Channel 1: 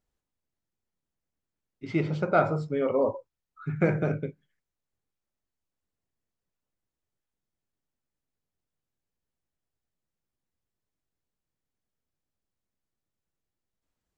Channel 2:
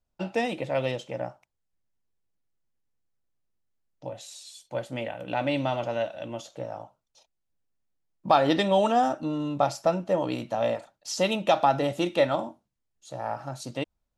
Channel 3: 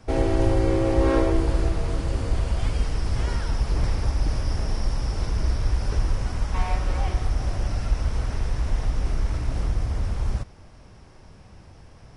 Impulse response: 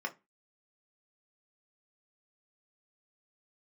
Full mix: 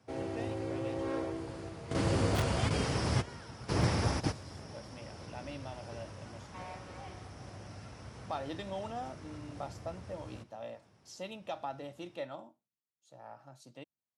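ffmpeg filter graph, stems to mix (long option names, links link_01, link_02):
-filter_complex "[0:a]aeval=exprs='(mod(4.73*val(0)+1,2)-1)/4.73':channel_layout=same,acrossover=split=590[link_01][link_02];[link_01]aeval=exprs='val(0)*(1-1/2+1/2*cos(2*PI*1.8*n/s))':channel_layout=same[link_03];[link_02]aeval=exprs='val(0)*(1-1/2-1/2*cos(2*PI*1.8*n/s))':channel_layout=same[link_04];[link_03][link_04]amix=inputs=2:normalize=0,volume=-14dB,asplit=2[link_05][link_06];[1:a]volume=-18dB[link_07];[2:a]volume=2dB[link_08];[link_06]apad=whole_len=540923[link_09];[link_08][link_09]sidechaingate=range=-16dB:threshold=-57dB:ratio=16:detection=peak[link_10];[link_05][link_07][link_10]amix=inputs=3:normalize=0,highpass=frequency=100:width=0.5412,highpass=frequency=100:width=1.3066"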